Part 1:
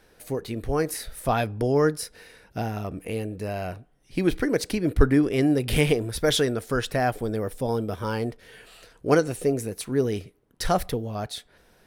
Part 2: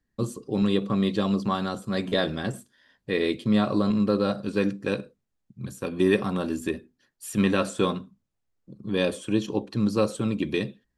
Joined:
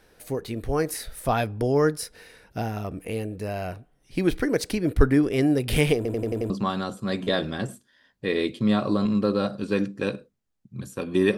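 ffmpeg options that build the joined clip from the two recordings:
ffmpeg -i cue0.wav -i cue1.wav -filter_complex "[0:a]apad=whole_dur=11.37,atrim=end=11.37,asplit=6[link_01][link_02][link_03][link_04][link_05][link_06];[link_01]atrim=end=6.052[link_07];[link_02]atrim=start=5.958:end=6.052[link_08];[link_03]atrim=start=5.958:end=6.052[link_09];[link_04]atrim=start=5.958:end=6.052[link_10];[link_05]atrim=start=5.958:end=6.052[link_11];[link_06]atrim=start=5.958:end=6.052[link_12];[1:a]atrim=start=1.348:end=6.22[link_13];[link_07][link_08]acrossfade=duration=0.004:curve1=hsin:curve2=hsin[link_14];[link_14][link_09]acrossfade=duration=0.004:curve1=hsin:curve2=hsin[link_15];[link_15][link_10]acrossfade=duration=0.004:curve1=hsin:curve2=hsin[link_16];[link_16][link_11]acrossfade=duration=0.004:curve1=hsin:curve2=hsin[link_17];[link_17][link_12]acrossfade=duration=0.004:curve1=hsin:curve2=hsin[link_18];[link_18][link_13]acrossfade=duration=0.004:curve1=hsin:curve2=hsin" out.wav

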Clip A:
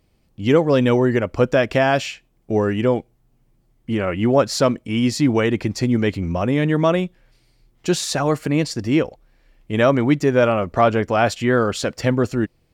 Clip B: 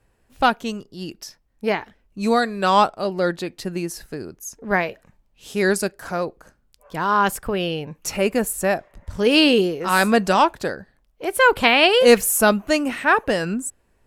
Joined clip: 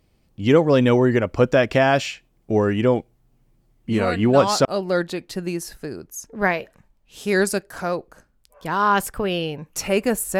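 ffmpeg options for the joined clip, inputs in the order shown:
ffmpeg -i cue0.wav -i cue1.wav -filter_complex "[1:a]asplit=2[link_01][link_02];[0:a]apad=whole_dur=10.39,atrim=end=10.39,atrim=end=4.652[link_03];[link_02]atrim=start=2.938:end=8.68[link_04];[link_01]atrim=start=2.12:end=2.94,asetpts=PTS-STARTPTS,volume=-8dB,afade=type=in:duration=0.004:curve=hsin,afade=type=out:start_time=0.816:duration=0.004:curve=hsin,adelay=3830[link_05];[link_03][link_04]acrossfade=duration=0.004:curve1=hsin:curve2=hsin[link_06];[link_06][link_05]amix=inputs=2:normalize=0" out.wav

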